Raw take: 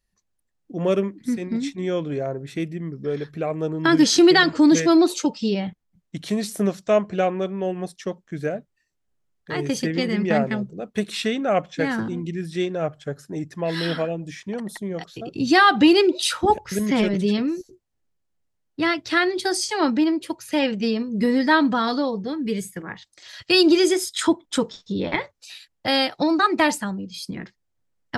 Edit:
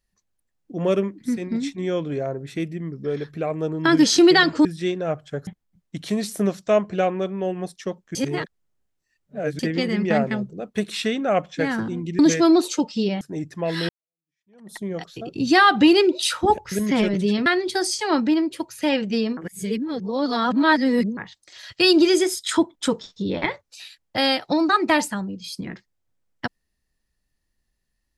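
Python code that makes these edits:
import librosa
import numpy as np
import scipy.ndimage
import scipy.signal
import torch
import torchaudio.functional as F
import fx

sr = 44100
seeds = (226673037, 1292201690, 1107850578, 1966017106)

y = fx.edit(x, sr, fx.swap(start_s=4.65, length_s=1.02, other_s=12.39, other_length_s=0.82),
    fx.reverse_span(start_s=8.35, length_s=1.44),
    fx.fade_in_span(start_s=13.89, length_s=0.87, curve='exp'),
    fx.cut(start_s=17.46, length_s=1.7),
    fx.reverse_span(start_s=21.07, length_s=1.8), tone=tone)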